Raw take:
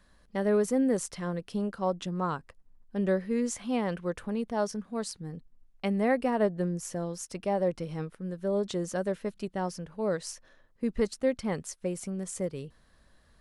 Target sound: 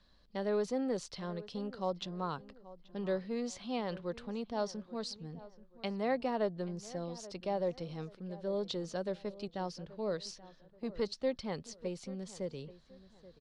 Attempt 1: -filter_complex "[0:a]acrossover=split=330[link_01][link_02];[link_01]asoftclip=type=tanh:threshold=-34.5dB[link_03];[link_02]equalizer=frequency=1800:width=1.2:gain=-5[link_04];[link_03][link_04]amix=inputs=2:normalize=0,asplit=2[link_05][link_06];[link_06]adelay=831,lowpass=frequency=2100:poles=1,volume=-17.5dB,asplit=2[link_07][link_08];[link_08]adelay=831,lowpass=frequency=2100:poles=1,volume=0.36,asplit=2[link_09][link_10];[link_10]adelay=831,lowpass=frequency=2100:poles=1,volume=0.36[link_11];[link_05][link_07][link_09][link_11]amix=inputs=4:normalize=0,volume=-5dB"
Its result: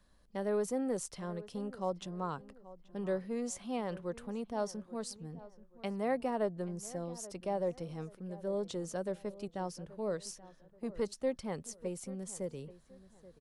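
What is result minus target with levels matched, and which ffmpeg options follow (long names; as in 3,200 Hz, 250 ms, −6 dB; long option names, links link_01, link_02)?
4,000 Hz band −6.0 dB
-filter_complex "[0:a]acrossover=split=330[link_01][link_02];[link_01]asoftclip=type=tanh:threshold=-34.5dB[link_03];[link_02]lowpass=frequency=4300:width_type=q:width=2.7,equalizer=frequency=1800:width=1.2:gain=-5[link_04];[link_03][link_04]amix=inputs=2:normalize=0,asplit=2[link_05][link_06];[link_06]adelay=831,lowpass=frequency=2100:poles=1,volume=-17.5dB,asplit=2[link_07][link_08];[link_08]adelay=831,lowpass=frequency=2100:poles=1,volume=0.36,asplit=2[link_09][link_10];[link_10]adelay=831,lowpass=frequency=2100:poles=1,volume=0.36[link_11];[link_05][link_07][link_09][link_11]amix=inputs=4:normalize=0,volume=-5dB"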